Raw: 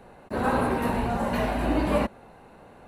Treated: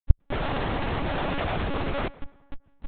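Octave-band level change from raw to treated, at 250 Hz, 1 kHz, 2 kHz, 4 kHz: -6.0 dB, -3.5 dB, -0.5 dB, +4.0 dB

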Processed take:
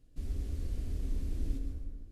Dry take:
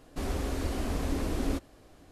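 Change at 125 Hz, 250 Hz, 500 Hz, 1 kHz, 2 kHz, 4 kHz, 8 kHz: -3.0 dB, -12.0 dB, -17.0 dB, -25.0 dB, -20.0 dB, -16.0 dB, -14.5 dB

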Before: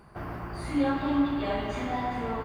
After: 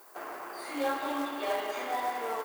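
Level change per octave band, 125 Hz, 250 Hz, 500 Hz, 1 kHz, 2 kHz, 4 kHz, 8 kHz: under -25 dB, -11.5 dB, -1.0 dB, 0.0 dB, 0.0 dB, +0.5 dB, no reading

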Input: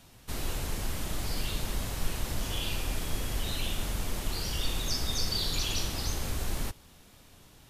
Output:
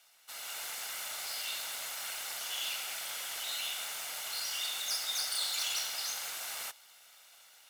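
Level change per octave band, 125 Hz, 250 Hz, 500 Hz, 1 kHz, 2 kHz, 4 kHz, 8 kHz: under -35 dB, under -25 dB, -12.0 dB, -3.5 dB, +0.5 dB, -0.5 dB, +1.5 dB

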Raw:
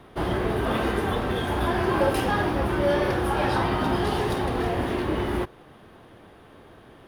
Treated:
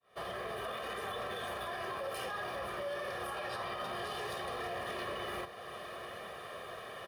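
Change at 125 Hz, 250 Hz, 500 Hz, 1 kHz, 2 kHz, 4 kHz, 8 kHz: -23.5 dB, -23.5 dB, -14.0 dB, -12.5 dB, -10.5 dB, -8.5 dB, -8.5 dB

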